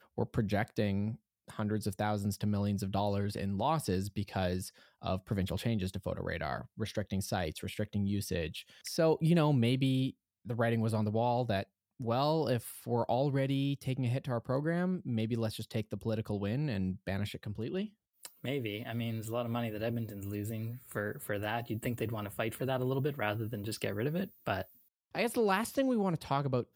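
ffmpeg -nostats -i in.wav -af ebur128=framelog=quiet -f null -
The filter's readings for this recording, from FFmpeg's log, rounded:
Integrated loudness:
  I:         -34.3 LUFS
  Threshold: -44.4 LUFS
Loudness range:
  LRA:         5.6 LU
  Threshold: -54.5 LUFS
  LRA low:   -37.3 LUFS
  LRA high:  -31.7 LUFS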